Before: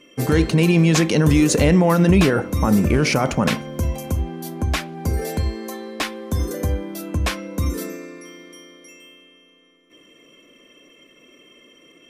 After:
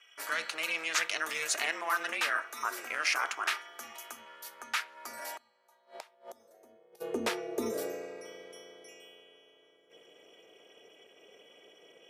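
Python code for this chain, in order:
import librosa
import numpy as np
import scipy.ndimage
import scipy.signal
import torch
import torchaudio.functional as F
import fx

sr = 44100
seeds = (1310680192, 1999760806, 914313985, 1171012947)

y = fx.gate_flip(x, sr, shuts_db=-23.0, range_db=-25, at=(5.36, 7.0), fade=0.02)
y = y * np.sin(2.0 * np.pi * 160.0 * np.arange(len(y)) / sr)
y = fx.filter_sweep_highpass(y, sr, from_hz=1400.0, to_hz=400.0, start_s=4.88, end_s=7.18, q=2.0)
y = y * 10.0 ** (-6.0 / 20.0)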